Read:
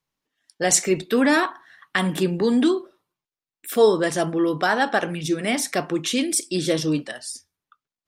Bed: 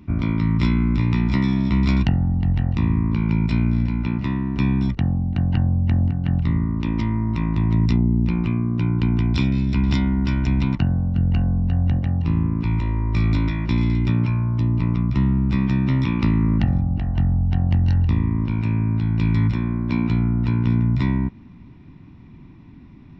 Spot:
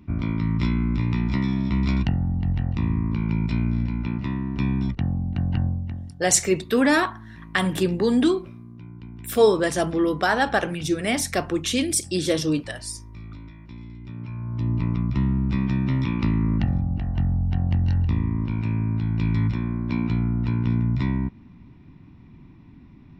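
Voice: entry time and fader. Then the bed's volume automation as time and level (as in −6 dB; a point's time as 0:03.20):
5.60 s, −0.5 dB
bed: 0:05.66 −4 dB
0:06.14 −20.5 dB
0:14.00 −20.5 dB
0:14.70 −3.5 dB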